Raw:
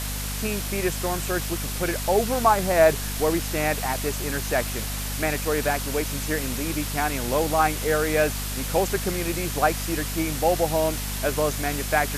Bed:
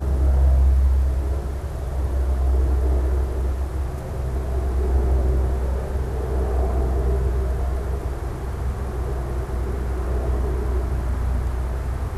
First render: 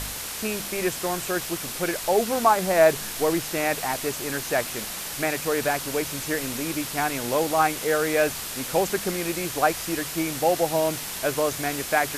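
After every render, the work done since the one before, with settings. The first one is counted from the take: de-hum 50 Hz, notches 5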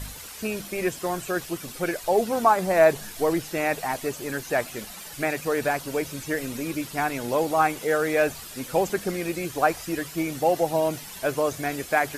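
noise reduction 11 dB, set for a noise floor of -34 dBFS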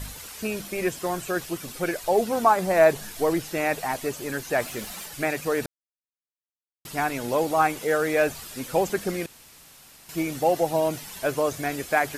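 4.60–5.06 s: companding laws mixed up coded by mu; 5.66–6.85 s: mute; 9.26–10.09 s: room tone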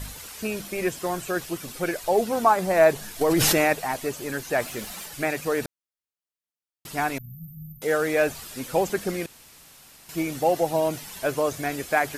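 3.21–3.73 s: level flattener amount 100%; 7.18–7.82 s: brick-wall FIR band-stop 210–13000 Hz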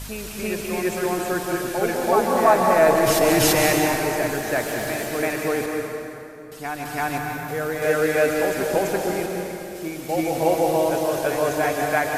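reverse echo 335 ms -4.5 dB; plate-style reverb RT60 2.9 s, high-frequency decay 0.65×, pre-delay 120 ms, DRR 1 dB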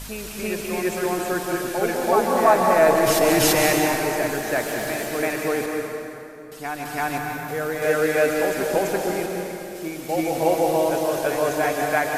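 peaking EQ 85 Hz -7 dB 1 oct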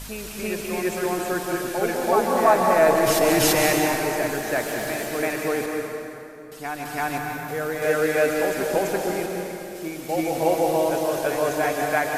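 trim -1 dB

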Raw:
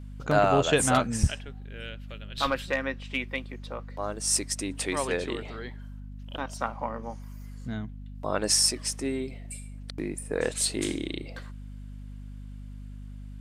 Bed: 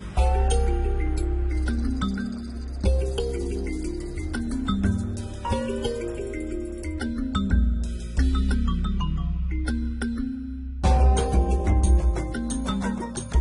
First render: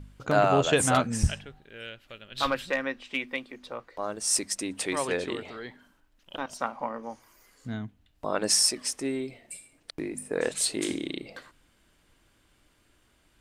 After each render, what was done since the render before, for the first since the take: de-hum 50 Hz, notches 5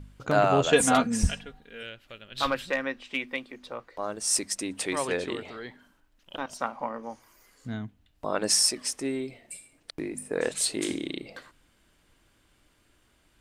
0.71–1.83 s: comb 4.2 ms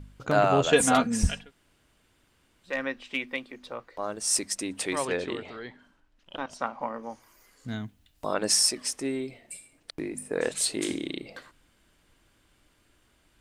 1.45–2.71 s: room tone, crossfade 0.16 s; 5.05–6.81 s: distance through air 51 m; 7.68–8.34 s: treble shelf 3.5 kHz +10.5 dB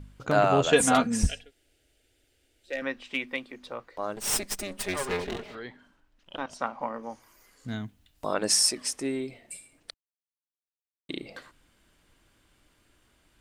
1.26–2.82 s: static phaser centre 440 Hz, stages 4; 4.16–5.55 s: comb filter that takes the minimum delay 4.9 ms; 9.94–11.09 s: mute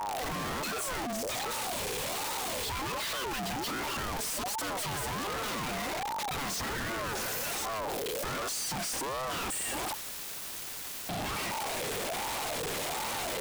one-bit comparator; ring modulator with a swept carrier 670 Hz, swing 35%, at 1.3 Hz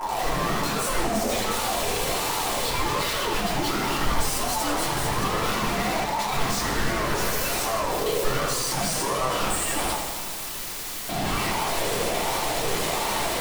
simulated room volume 130 m³, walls furnished, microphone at 3 m; modulated delay 80 ms, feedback 76%, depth 157 cents, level -8 dB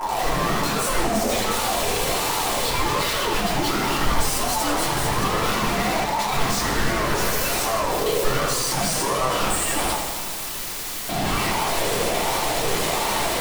trim +3 dB

